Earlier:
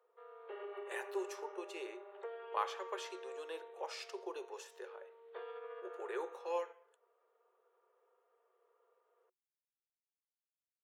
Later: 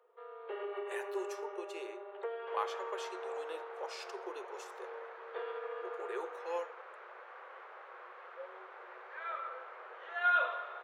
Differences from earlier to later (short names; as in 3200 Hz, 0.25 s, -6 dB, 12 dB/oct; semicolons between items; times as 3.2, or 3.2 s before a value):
first sound +6.0 dB; second sound: unmuted